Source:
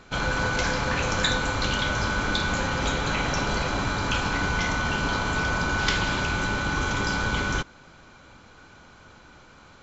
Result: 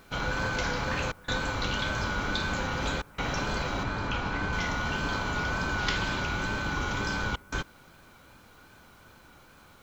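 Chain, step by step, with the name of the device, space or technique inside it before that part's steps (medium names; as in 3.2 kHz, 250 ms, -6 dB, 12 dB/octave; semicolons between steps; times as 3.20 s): worn cassette (low-pass 6.8 kHz; wow and flutter; level dips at 1.12/3.02/7.36 s, 160 ms -22 dB; white noise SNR 35 dB); 3.83–4.53 s: treble shelf 5 kHz -12 dB; trim -4.5 dB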